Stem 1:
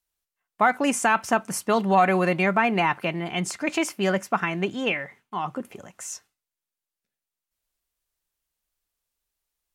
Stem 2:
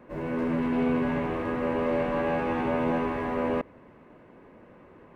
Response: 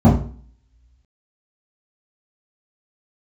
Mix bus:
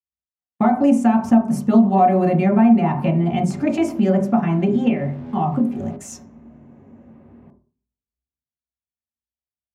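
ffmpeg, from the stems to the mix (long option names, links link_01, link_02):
-filter_complex "[0:a]agate=range=-29dB:threshold=-44dB:ratio=16:detection=peak,volume=-1dB,asplit=2[link_01][link_02];[link_02]volume=-16dB[link_03];[1:a]acompressor=threshold=-30dB:ratio=6,asoftclip=type=tanh:threshold=-40dB,adelay=2350,volume=-5.5dB,asplit=2[link_04][link_05];[link_05]volume=-23dB[link_06];[2:a]atrim=start_sample=2205[link_07];[link_03][link_06]amix=inputs=2:normalize=0[link_08];[link_08][link_07]afir=irnorm=-1:irlink=0[link_09];[link_01][link_04][link_09]amix=inputs=3:normalize=0,lowshelf=frequency=180:gain=-5,acompressor=threshold=-20dB:ratio=2"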